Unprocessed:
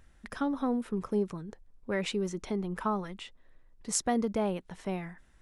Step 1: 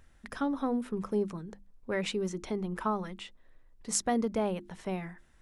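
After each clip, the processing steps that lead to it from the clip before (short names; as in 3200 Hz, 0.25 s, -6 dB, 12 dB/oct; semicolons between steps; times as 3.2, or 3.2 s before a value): notches 50/100/150/200/250/300/350 Hz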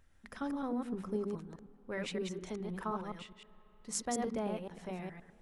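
reverse delay 0.104 s, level -3 dB; on a send at -21 dB: reverb RT60 5.0 s, pre-delay 37 ms; on the sum: gain -7.5 dB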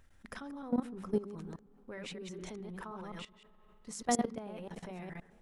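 level quantiser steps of 17 dB; gain +7 dB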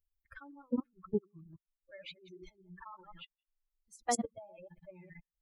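per-bin expansion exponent 3; gain +2.5 dB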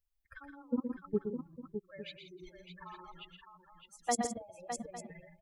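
tapped delay 0.119/0.165/0.609/0.854 s -7/-13.5/-8/-15.5 dB; hard clip -20 dBFS, distortion -45 dB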